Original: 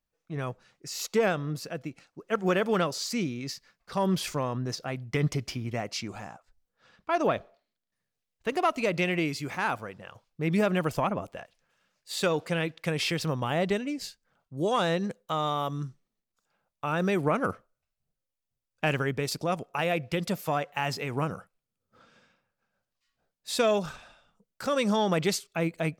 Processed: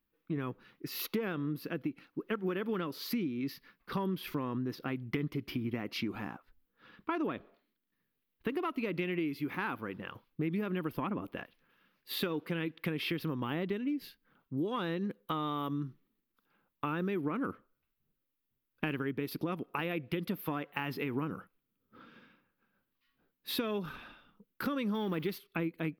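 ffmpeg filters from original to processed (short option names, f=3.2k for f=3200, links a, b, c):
-filter_complex "[0:a]asettb=1/sr,asplit=3[a][b][c];[a]atrim=end=24.944[d];[b]atrim=start=24.94:end=25.38,asetpts=PTS-STARTPTS,afade=t=in:d=0.004:c=qsin,afade=t=out:st=0.436:d=0.004:c=qsin,aeval=exprs='val(0)+0.5*0.015*sgn(val(0))':c=same[e];[c]atrim=start=25.376[f];[d][e]acrossfade=d=0.004:c1=hsin:c2=qsin[g];[g][f]acrossfade=d=0.004:c1=qsin:c2=hsin,firequalizer=gain_entry='entry(110,0);entry(290,12);entry(640,-7);entry(1000,3);entry(3300,2);entry(7300,-21);entry(12000,7)':delay=0.05:min_phase=1,acompressor=threshold=-32dB:ratio=6"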